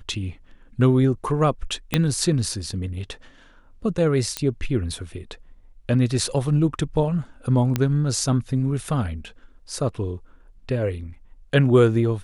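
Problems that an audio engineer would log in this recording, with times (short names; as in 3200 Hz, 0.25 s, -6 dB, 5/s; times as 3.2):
1.94 pop -5 dBFS
4.37 pop -8 dBFS
7.76 pop -8 dBFS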